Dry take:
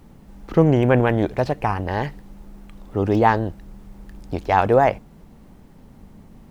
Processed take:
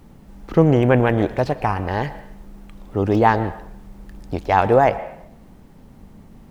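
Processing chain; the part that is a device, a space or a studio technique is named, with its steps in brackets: filtered reverb send (on a send: HPF 420 Hz + LPF 3500 Hz + reverb RT60 0.70 s, pre-delay 0.106 s, DRR 13.5 dB); on the sum: gain +1 dB

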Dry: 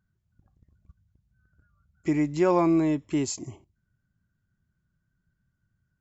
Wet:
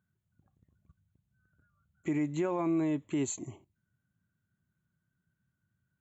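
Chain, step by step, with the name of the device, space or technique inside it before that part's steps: PA system with an anti-feedback notch (HPF 100 Hz 12 dB/oct; Butterworth band-stop 5100 Hz, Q 2.5; limiter -19.5 dBFS, peak gain reduction 9 dB); gain -3 dB

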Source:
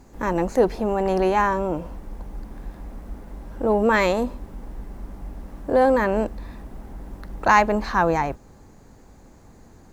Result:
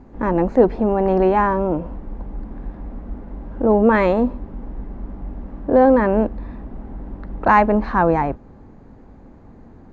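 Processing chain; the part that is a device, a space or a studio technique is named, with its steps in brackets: phone in a pocket (LPF 3400 Hz 12 dB/oct; bell 250 Hz +4 dB 0.56 oct; high shelf 2100 Hz -11.5 dB); gain +4.5 dB

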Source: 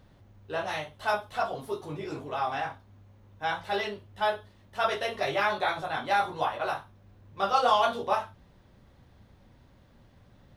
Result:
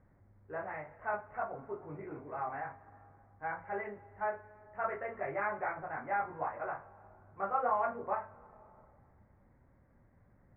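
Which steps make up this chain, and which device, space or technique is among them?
compressed reverb return (on a send at -14 dB: reverb RT60 2.1 s, pre-delay 83 ms + compressor, threshold -31 dBFS, peak gain reduction 11.5 dB); on the sum: steep low-pass 2200 Hz 72 dB/oct; gain -8 dB

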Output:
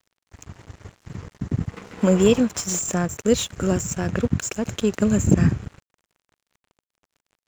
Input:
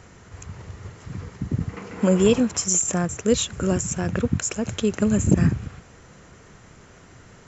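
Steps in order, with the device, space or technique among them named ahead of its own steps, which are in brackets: early transistor amplifier (crossover distortion -40 dBFS; slew limiter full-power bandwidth 360 Hz); gain +1.5 dB

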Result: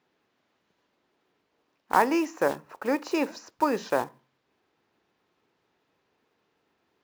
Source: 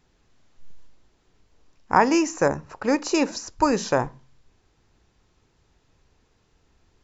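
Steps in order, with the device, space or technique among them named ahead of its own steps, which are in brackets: early digital voice recorder (BPF 260–3600 Hz; block floating point 5-bit); gain -3.5 dB

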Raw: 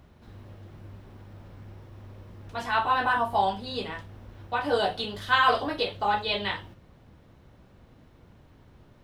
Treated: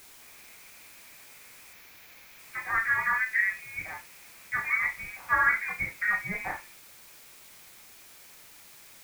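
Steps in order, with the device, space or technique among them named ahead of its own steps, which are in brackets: scrambled radio voice (BPF 310–2900 Hz; inverted band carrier 2700 Hz; white noise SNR 19 dB); 1.73–2.39 bell 8600 Hz -11 dB 0.47 oct; gain -2 dB

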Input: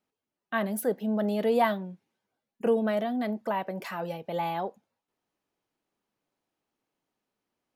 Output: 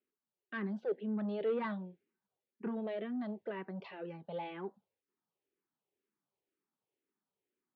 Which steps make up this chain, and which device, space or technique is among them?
barber-pole phaser into a guitar amplifier (endless phaser -2 Hz; soft clip -24 dBFS, distortion -16 dB; speaker cabinet 86–3600 Hz, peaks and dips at 190 Hz +3 dB, 390 Hz +9 dB, 690 Hz -4 dB); gain -7 dB

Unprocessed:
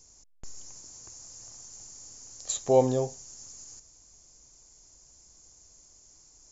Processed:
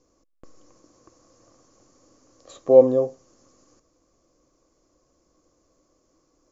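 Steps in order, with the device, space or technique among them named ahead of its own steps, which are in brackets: inside a cardboard box (LPF 3900 Hz 12 dB/oct; small resonant body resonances 320/510/1100 Hz, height 18 dB, ringing for 25 ms); gain -8.5 dB

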